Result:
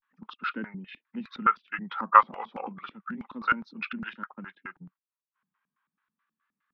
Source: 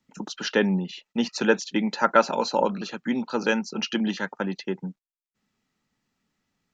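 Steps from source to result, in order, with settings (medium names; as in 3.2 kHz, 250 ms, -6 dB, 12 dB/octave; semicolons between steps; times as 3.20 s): high-order bell 2.2 kHz +14 dB 2.4 oct; LFO band-pass square 4.7 Hz 250–1500 Hz; formant shift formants -3 st; vibrato 0.33 Hz 79 cents; trim -7 dB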